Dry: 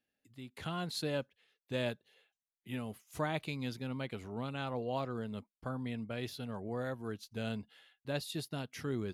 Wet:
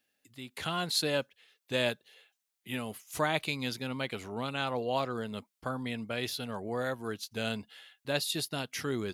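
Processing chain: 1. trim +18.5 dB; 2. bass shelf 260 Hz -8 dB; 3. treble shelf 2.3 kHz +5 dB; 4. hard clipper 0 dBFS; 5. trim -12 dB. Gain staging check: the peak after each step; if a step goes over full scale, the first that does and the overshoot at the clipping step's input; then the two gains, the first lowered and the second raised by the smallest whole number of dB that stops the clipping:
-5.0 dBFS, -4.5 dBFS, -2.0 dBFS, -2.0 dBFS, -14.0 dBFS; nothing clips

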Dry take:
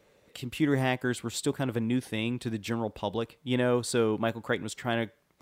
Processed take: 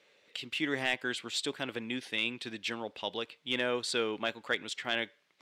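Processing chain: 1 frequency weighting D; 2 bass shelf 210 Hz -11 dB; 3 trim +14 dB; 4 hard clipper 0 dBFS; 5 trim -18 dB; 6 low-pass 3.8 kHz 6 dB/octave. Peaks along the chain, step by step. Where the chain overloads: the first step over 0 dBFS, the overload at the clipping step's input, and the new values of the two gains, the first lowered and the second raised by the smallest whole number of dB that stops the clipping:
-6.5 dBFS, -7.0 dBFS, +7.0 dBFS, 0.0 dBFS, -18.0 dBFS, -18.0 dBFS; step 3, 7.0 dB; step 3 +7 dB, step 5 -11 dB

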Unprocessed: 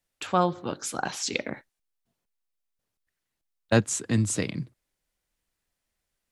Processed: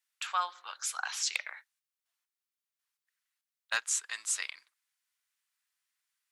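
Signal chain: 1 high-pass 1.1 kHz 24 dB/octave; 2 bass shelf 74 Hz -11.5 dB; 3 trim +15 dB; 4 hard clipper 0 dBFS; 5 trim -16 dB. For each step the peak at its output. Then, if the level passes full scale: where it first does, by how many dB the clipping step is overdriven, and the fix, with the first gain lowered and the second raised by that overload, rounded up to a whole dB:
-8.5 dBFS, -8.5 dBFS, +6.5 dBFS, 0.0 dBFS, -16.0 dBFS; step 3, 6.5 dB; step 3 +8 dB, step 5 -9 dB

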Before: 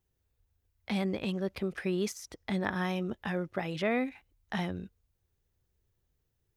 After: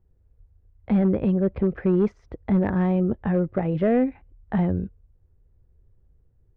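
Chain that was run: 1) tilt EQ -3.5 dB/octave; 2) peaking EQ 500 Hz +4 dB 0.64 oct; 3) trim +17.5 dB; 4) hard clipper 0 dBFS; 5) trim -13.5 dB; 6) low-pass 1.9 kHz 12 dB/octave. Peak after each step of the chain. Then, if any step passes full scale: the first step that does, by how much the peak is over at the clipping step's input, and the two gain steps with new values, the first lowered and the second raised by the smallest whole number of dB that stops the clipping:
-13.0 dBFS, -12.0 dBFS, +5.5 dBFS, 0.0 dBFS, -13.5 dBFS, -13.0 dBFS; step 3, 5.5 dB; step 3 +11.5 dB, step 5 -7.5 dB

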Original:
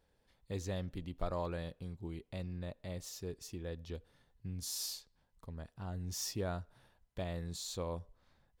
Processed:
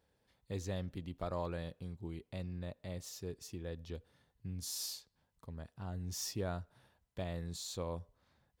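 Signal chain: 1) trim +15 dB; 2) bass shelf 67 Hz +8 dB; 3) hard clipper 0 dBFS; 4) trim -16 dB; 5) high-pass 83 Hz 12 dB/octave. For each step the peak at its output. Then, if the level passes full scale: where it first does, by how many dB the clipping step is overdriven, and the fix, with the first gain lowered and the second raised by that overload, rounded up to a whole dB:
-7.5 dBFS, -4.0 dBFS, -4.0 dBFS, -20.0 dBFS, -26.5 dBFS; nothing clips

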